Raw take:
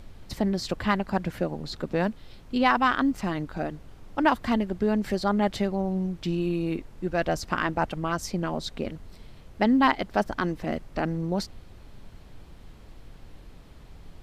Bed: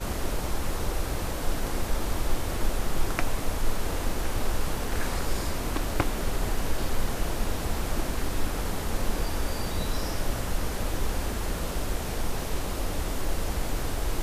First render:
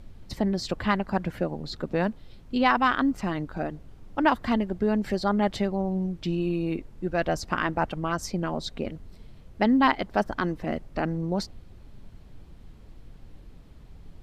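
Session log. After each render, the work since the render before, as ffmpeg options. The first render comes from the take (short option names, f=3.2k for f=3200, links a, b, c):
-af "afftdn=nr=6:nf=-49"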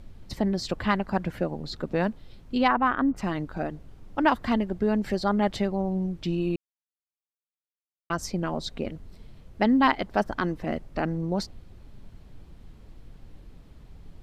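-filter_complex "[0:a]asplit=3[a][b][c];[a]afade=t=out:st=2.67:d=0.02[d];[b]lowpass=1.6k,afade=t=in:st=2.67:d=0.02,afade=t=out:st=3.16:d=0.02[e];[c]afade=t=in:st=3.16:d=0.02[f];[d][e][f]amix=inputs=3:normalize=0,asplit=3[g][h][i];[g]atrim=end=6.56,asetpts=PTS-STARTPTS,afade=t=out:st=6.556:d=0.004:c=hsin[j];[h]atrim=start=6.56:end=8.1,asetpts=PTS-STARTPTS,volume=0[k];[i]atrim=start=8.1,asetpts=PTS-STARTPTS,afade=t=in:d=0.004:c=hsin[l];[j][k][l]concat=n=3:v=0:a=1"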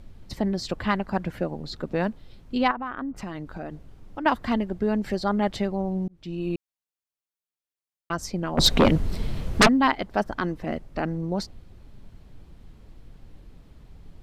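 -filter_complex "[0:a]asettb=1/sr,asplit=3[a][b][c];[a]atrim=end=2.714[d];[b]atrim=start=2.71:end=4.26,asetpts=PTS-STARTPTS,afade=t=in:d=0.004:c=qsin,afade=t=out:st=1.546:d=0.004:c=qsin,acompressor=threshold=-31dB:ratio=3:attack=3.2:release=140:knee=1:detection=peak[e];[c]atrim=start=4.256[f];[d][e]acrossfade=d=0.004:c1=hsin:c2=qsin[g];[g][f]acrossfade=d=0.004:c1=qsin:c2=hsin,asplit=3[h][i][j];[h]afade=t=out:st=8.57:d=0.02[k];[i]aeval=exprs='0.299*sin(PI/2*5.62*val(0)/0.299)':c=same,afade=t=in:st=8.57:d=0.02,afade=t=out:st=9.67:d=0.02[l];[j]afade=t=in:st=9.67:d=0.02[m];[k][l][m]amix=inputs=3:normalize=0,asplit=2[n][o];[n]atrim=end=6.08,asetpts=PTS-STARTPTS,afade=t=out:st=6.076:d=0.004:c=hsin[p];[o]atrim=start=6.08,asetpts=PTS-STARTPTS,afade=t=in:d=0.46[q];[p][q]concat=n=2:v=0:a=1"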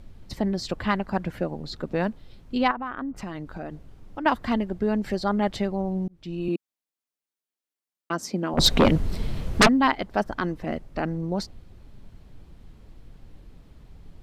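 -filter_complex "[0:a]asettb=1/sr,asplit=3[a][b][c];[a]atrim=end=6.484[d];[b]atrim=start=6.48:end=8.54,asetpts=PTS-STARTPTS,afade=t=in:d=0.004:c=qsin,afade=t=out:st=2.056:d=0.004:c=qsin,highpass=f=230:t=q:w=1.7[e];[c]atrim=start=8.536[f];[d][e]acrossfade=d=0.004:c1=hsin:c2=qsin[g];[g][f]acrossfade=d=0.004:c1=qsin:c2=hsin"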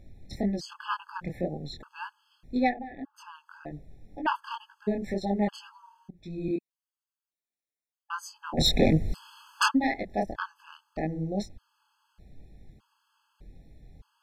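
-af "flanger=delay=19:depth=7.2:speed=1.9,afftfilt=real='re*gt(sin(2*PI*0.82*pts/sr)*(1-2*mod(floor(b*sr/1024/860),2)),0)':imag='im*gt(sin(2*PI*0.82*pts/sr)*(1-2*mod(floor(b*sr/1024/860),2)),0)':win_size=1024:overlap=0.75"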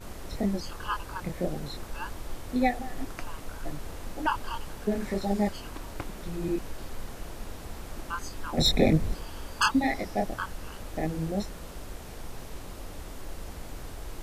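-filter_complex "[1:a]volume=-11dB[a];[0:a][a]amix=inputs=2:normalize=0"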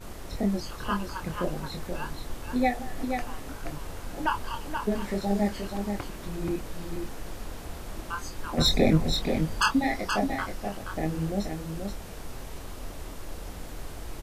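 -filter_complex "[0:a]asplit=2[a][b];[b]adelay=25,volume=-11dB[c];[a][c]amix=inputs=2:normalize=0,aecho=1:1:478:0.501"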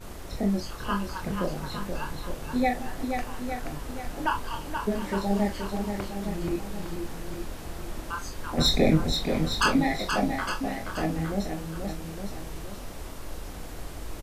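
-filter_complex "[0:a]asplit=2[a][b];[b]adelay=41,volume=-10.5dB[c];[a][c]amix=inputs=2:normalize=0,asplit=2[d][e];[e]aecho=0:1:860:0.355[f];[d][f]amix=inputs=2:normalize=0"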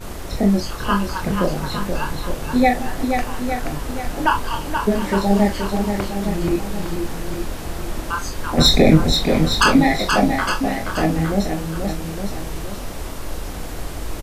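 -af "volume=9.5dB,alimiter=limit=-2dB:level=0:latency=1"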